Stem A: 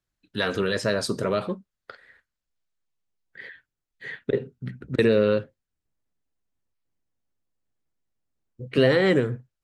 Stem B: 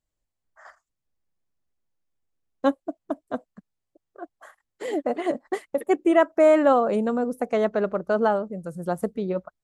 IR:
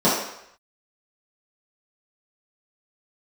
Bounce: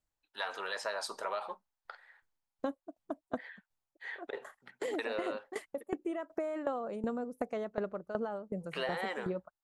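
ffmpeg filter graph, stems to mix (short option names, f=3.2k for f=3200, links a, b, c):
-filter_complex "[0:a]dynaudnorm=f=470:g=3:m=3dB,highpass=f=840:t=q:w=4.6,volume=-11dB[a];[1:a]alimiter=limit=-15dB:level=0:latency=1:release=14,aeval=exprs='val(0)*pow(10,-19*if(lt(mod(2.7*n/s,1),2*abs(2.7)/1000),1-mod(2.7*n/s,1)/(2*abs(2.7)/1000),(mod(2.7*n/s,1)-2*abs(2.7)/1000)/(1-2*abs(2.7)/1000))/20)':c=same,volume=-1dB[b];[a][b]amix=inputs=2:normalize=0,acompressor=threshold=-32dB:ratio=6"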